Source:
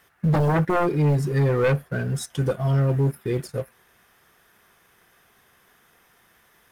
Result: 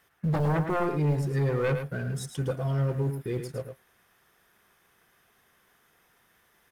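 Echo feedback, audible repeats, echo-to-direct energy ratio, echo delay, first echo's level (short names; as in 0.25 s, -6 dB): no steady repeat, 1, -8.0 dB, 0.108 s, -8.0 dB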